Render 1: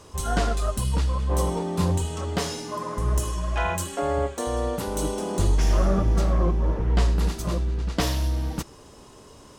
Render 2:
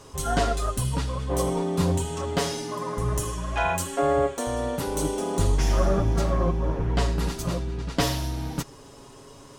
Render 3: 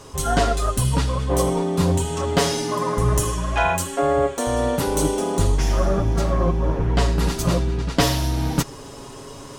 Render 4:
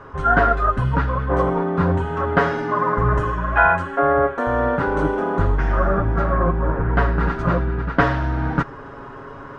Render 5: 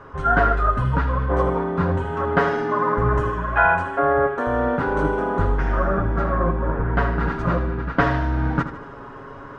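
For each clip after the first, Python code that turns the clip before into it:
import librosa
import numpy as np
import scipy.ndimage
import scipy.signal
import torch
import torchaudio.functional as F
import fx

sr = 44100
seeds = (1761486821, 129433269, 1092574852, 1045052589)

y1 = x + 0.55 * np.pad(x, (int(7.3 * sr / 1000.0), 0))[:len(x)]
y2 = fx.rider(y1, sr, range_db=4, speed_s=0.5)
y2 = F.gain(torch.from_numpy(y2), 5.0).numpy()
y3 = fx.lowpass_res(y2, sr, hz=1500.0, q=3.8)
y4 = fx.echo_feedback(y3, sr, ms=77, feedback_pct=52, wet_db=-12.0)
y4 = F.gain(torch.from_numpy(y4), -2.0).numpy()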